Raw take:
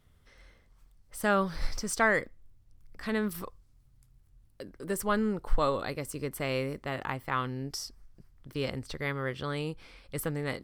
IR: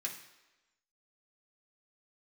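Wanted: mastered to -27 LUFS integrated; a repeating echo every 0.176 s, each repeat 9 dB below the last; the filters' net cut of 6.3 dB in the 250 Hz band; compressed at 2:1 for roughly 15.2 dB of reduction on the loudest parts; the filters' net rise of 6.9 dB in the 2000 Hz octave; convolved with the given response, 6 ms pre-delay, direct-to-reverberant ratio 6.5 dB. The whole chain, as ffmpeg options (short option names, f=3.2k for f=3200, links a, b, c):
-filter_complex "[0:a]equalizer=f=250:t=o:g=-8.5,equalizer=f=2k:t=o:g=8.5,acompressor=threshold=-46dB:ratio=2,aecho=1:1:176|352|528|704:0.355|0.124|0.0435|0.0152,asplit=2[a][b];[1:a]atrim=start_sample=2205,adelay=6[c];[b][c]afir=irnorm=-1:irlink=0,volume=-6.5dB[d];[a][d]amix=inputs=2:normalize=0,volume=13.5dB"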